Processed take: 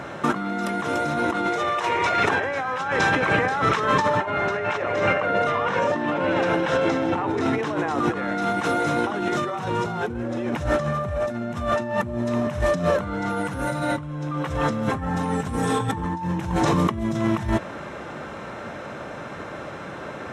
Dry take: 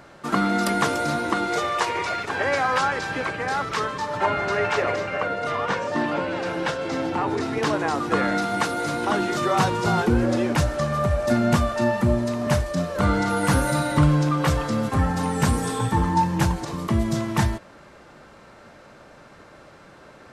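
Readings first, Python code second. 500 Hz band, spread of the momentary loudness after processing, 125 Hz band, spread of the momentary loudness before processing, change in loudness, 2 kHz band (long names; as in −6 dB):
+1.0 dB, 14 LU, −4.0 dB, 5 LU, −0.5 dB, +1.0 dB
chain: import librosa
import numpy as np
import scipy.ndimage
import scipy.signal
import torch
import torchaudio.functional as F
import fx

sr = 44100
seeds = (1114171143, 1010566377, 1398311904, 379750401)

y = scipy.signal.sosfilt(scipy.signal.butter(2, 73.0, 'highpass', fs=sr, output='sos'), x)
y = fx.high_shelf(y, sr, hz=6500.0, db=-11.0)
y = fx.notch(y, sr, hz=4600.0, q=5.1)
y = fx.over_compress(y, sr, threshold_db=-31.0, ratio=-1.0)
y = F.gain(torch.from_numpy(y), 6.5).numpy()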